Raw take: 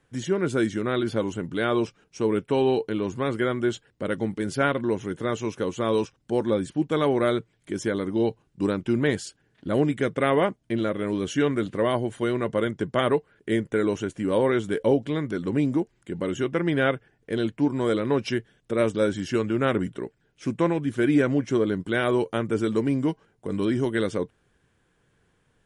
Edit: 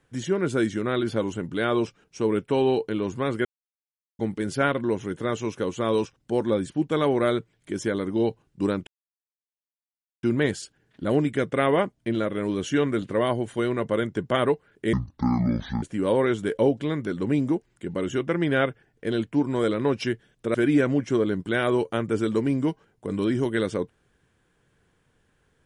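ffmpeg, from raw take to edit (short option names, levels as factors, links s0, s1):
-filter_complex "[0:a]asplit=7[s0][s1][s2][s3][s4][s5][s6];[s0]atrim=end=3.45,asetpts=PTS-STARTPTS,afade=t=out:st=3.446:d=0.004:c=hsin[s7];[s1]atrim=start=3.45:end=4.19,asetpts=PTS-STARTPTS,volume=0[s8];[s2]atrim=start=4.19:end=8.87,asetpts=PTS-STARTPTS,afade=t=in:d=0.004:c=hsin,afade=t=out:st=4.676:d=0.004:c=hsin,apad=pad_dur=1.36[s9];[s3]atrim=start=8.87:end=13.574,asetpts=PTS-STARTPTS,afade=t=in:d=0.004:c=hsin[s10];[s4]atrim=start=13.57:end=14.08,asetpts=PTS-STARTPTS,asetrate=25137,aresample=44100[s11];[s5]atrim=start=14.076:end=18.802[s12];[s6]atrim=start=20.948[s13];[s7][s8][s9][s10]concat=n=4:v=0:a=1[s14];[s14][s11]acrossfade=d=0.004:c1=hsin:c2=hsin[s15];[s15][s12]acrossfade=d=0.004:c1=hsin:c2=hsin[s16];[s16][s13]acrossfade=d=0.004:c1=hsin:c2=hsin"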